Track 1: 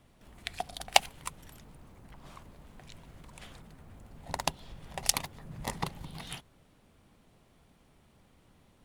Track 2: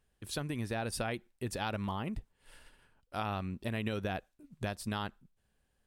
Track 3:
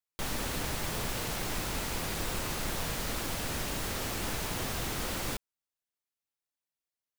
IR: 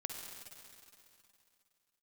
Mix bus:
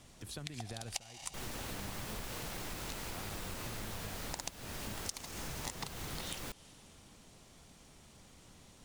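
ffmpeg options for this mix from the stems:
-filter_complex "[0:a]equalizer=frequency=6500:width=0.78:gain=13,volume=2dB,asplit=2[link_01][link_02];[link_02]volume=-16dB[link_03];[1:a]acrossover=split=130[link_04][link_05];[link_05]acompressor=threshold=-46dB:ratio=2.5[link_06];[link_04][link_06]amix=inputs=2:normalize=0,volume=-0.5dB,asplit=2[link_07][link_08];[2:a]adelay=1150,volume=-1dB[link_09];[link_08]apad=whole_len=390205[link_10];[link_01][link_10]sidechaincompress=threshold=-55dB:ratio=8:attack=24:release=175[link_11];[3:a]atrim=start_sample=2205[link_12];[link_03][link_12]afir=irnorm=-1:irlink=0[link_13];[link_11][link_07][link_09][link_13]amix=inputs=4:normalize=0,acompressor=threshold=-39dB:ratio=6"

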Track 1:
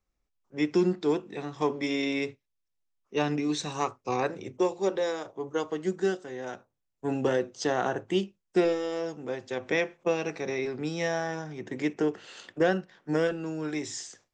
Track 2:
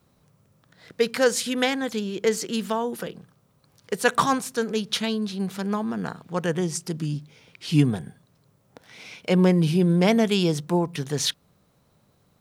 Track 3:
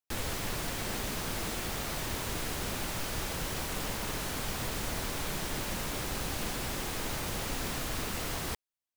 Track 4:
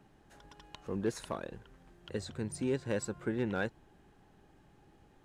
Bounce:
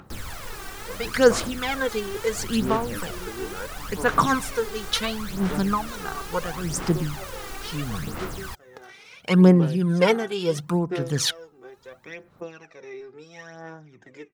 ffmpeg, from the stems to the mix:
ffmpeg -i stem1.wav -i stem2.wav -i stem3.wav -i stem4.wav -filter_complex "[0:a]adelay=2350,volume=-15dB[link_01];[1:a]tremolo=f=1.6:d=0.69,adynamicequalizer=threshold=0.00891:dfrequency=2900:dqfactor=0.7:tfrequency=2900:tqfactor=0.7:attack=5:release=100:ratio=0.375:range=1.5:mode=cutabove:tftype=highshelf,volume=-0.5dB[link_02];[2:a]volume=-5.5dB[link_03];[3:a]volume=-5.5dB[link_04];[link_01][link_02][link_03][link_04]amix=inputs=4:normalize=0,aphaser=in_gain=1:out_gain=1:delay=2.6:decay=0.65:speed=0.73:type=sinusoidal,acompressor=mode=upward:threshold=-44dB:ratio=2.5,equalizer=frequency=1300:width=1.8:gain=6.5" out.wav

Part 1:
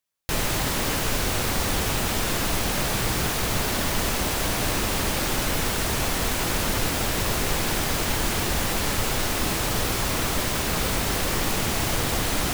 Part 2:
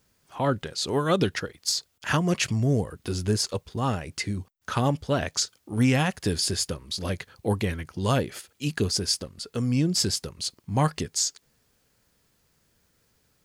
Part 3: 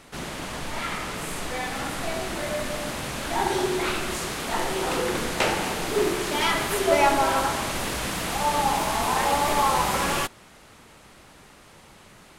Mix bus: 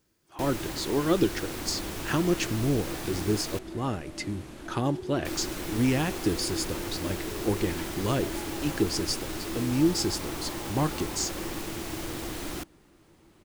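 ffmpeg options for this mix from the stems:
ffmpeg -i stem1.wav -i stem2.wav -i stem3.wav -filter_complex "[0:a]adelay=100,volume=-12.5dB,asplit=3[link_01][link_02][link_03];[link_01]atrim=end=3.59,asetpts=PTS-STARTPTS,afade=type=out:start_time=3.586:duration=0.004:curve=hsin[link_04];[link_02]atrim=start=3.59:end=5.25,asetpts=PTS-STARTPTS,volume=0[link_05];[link_03]atrim=start=5.25,asetpts=PTS-STARTPTS,afade=type=in:duration=0.004:curve=hsin[link_06];[link_04][link_05][link_06]concat=n=3:v=0:a=1[link_07];[1:a]volume=-5.5dB[link_08];[2:a]lowshelf=frequency=340:gain=9,acompressor=threshold=-27dB:ratio=6,adelay=1350,volume=-15dB[link_09];[link_07][link_08][link_09]amix=inputs=3:normalize=0,equalizer=frequency=330:width=4:gain=13.5" out.wav

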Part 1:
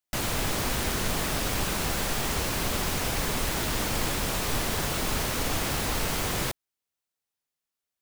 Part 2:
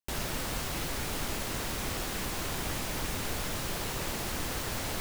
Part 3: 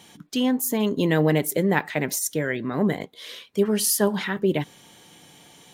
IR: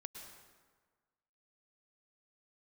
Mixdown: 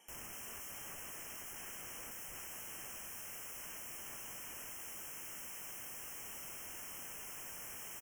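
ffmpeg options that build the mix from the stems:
-filter_complex "[0:a]adelay=2250,volume=-5.5dB,afade=type=out:start_time=5.85:duration=0.38:silence=0.334965[link_01];[1:a]volume=-12.5dB[link_02];[2:a]highpass=420,aeval=exprs='0.0891*(abs(mod(val(0)/0.0891+3,4)-2)-1)':channel_layout=same,volume=-13dB,asplit=2[link_03][link_04];[link_04]apad=whole_len=452523[link_05];[link_01][link_05]sidechaincompress=threshold=-57dB:ratio=16:attack=16:release=151[link_06];[link_06][link_02][link_03]amix=inputs=3:normalize=0,equalizer=frequency=12000:width_type=o:width=0.26:gain=4,aeval=exprs='(mod(133*val(0)+1,2)-1)/133':channel_layout=same,asuperstop=centerf=4100:order=20:qfactor=2"

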